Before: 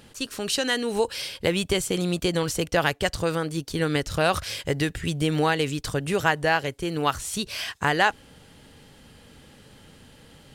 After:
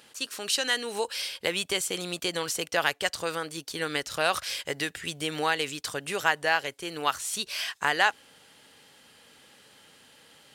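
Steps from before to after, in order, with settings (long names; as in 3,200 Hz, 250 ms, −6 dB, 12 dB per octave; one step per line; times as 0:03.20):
high-pass filter 920 Hz 6 dB per octave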